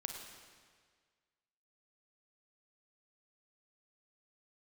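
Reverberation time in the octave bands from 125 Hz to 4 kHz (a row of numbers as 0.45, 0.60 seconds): 1.7, 1.6, 1.7, 1.7, 1.7, 1.6 seconds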